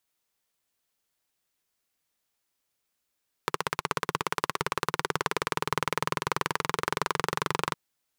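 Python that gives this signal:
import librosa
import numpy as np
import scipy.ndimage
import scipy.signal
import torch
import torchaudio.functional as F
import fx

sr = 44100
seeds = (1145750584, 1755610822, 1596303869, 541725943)

y = fx.engine_single_rev(sr, seeds[0], length_s=4.26, rpm=1900, resonances_hz=(160.0, 420.0, 1000.0), end_rpm=2800)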